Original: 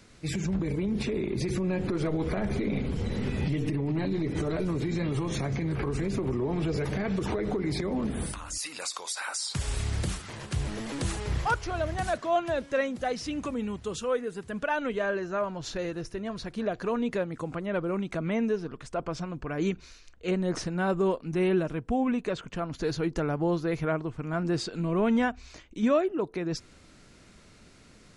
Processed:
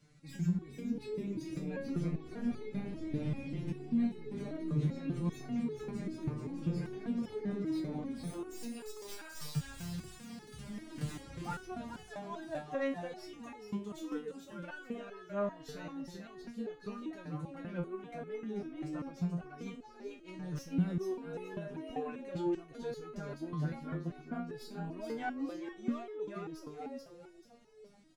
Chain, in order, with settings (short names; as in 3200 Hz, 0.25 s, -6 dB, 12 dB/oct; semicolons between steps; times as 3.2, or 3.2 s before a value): tracing distortion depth 0.064 ms; bell 150 Hz +12 dB 0.92 oct; on a send: frequency-shifting echo 0.435 s, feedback 37%, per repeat +89 Hz, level -5.5 dB; on the sum: stepped resonator 5.1 Hz 150–430 Hz; gain -2 dB